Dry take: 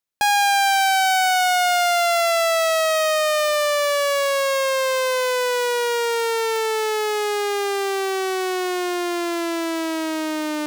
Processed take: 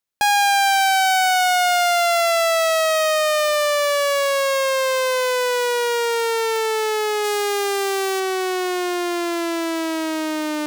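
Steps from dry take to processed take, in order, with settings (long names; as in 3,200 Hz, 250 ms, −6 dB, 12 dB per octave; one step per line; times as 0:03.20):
0:07.24–0:08.20: high-shelf EQ 5,300 Hz +5.5 dB
level +1 dB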